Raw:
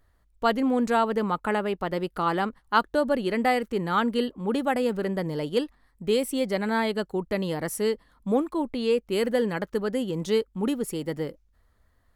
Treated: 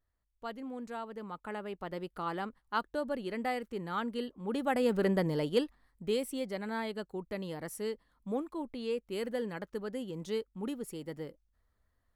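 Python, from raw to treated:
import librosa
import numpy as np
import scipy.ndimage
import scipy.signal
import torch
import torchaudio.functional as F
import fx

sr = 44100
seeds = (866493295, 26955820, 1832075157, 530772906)

y = fx.gain(x, sr, db=fx.line((1.11, -18.0), (1.9, -11.0), (4.35, -11.0), (5.07, 0.0), (6.54, -11.0)))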